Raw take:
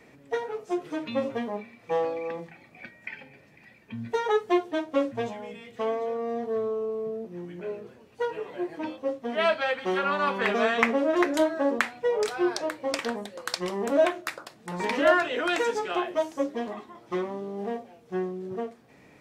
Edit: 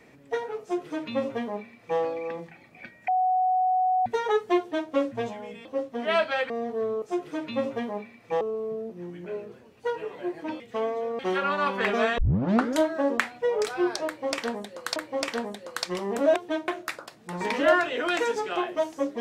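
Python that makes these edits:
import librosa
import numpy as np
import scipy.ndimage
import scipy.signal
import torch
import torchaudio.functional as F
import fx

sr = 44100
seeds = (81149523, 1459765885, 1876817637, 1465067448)

y = fx.edit(x, sr, fx.duplicate(start_s=0.61, length_s=1.39, to_s=6.76),
    fx.bleep(start_s=3.08, length_s=0.98, hz=742.0, db=-20.0),
    fx.duplicate(start_s=4.59, length_s=0.32, to_s=14.07),
    fx.swap(start_s=5.65, length_s=0.59, other_s=8.95, other_length_s=0.85),
    fx.tape_start(start_s=10.79, length_s=0.59),
    fx.repeat(start_s=12.67, length_s=0.9, count=2), tone=tone)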